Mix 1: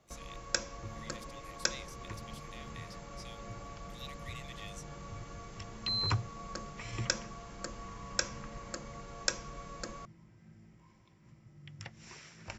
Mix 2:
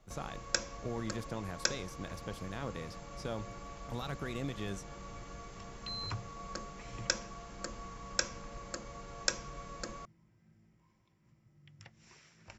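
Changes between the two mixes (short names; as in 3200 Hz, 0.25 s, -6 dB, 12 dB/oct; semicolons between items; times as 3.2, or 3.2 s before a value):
speech: remove brick-wall FIR high-pass 1800 Hz; second sound -8.5 dB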